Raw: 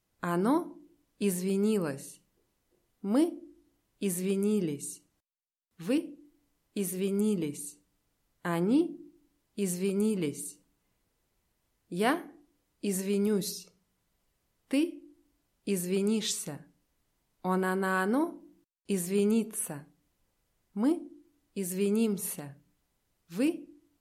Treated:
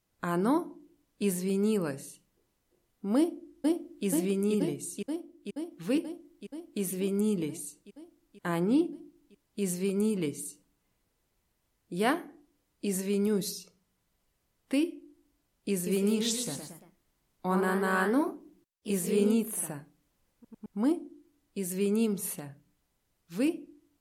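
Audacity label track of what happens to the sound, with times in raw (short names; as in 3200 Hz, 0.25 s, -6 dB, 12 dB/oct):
3.160000	4.060000	echo throw 0.48 s, feedback 75%, level -1.5 dB
15.710000	20.790000	echoes that change speed 0.155 s, each echo +1 st, echoes 3, each echo -6 dB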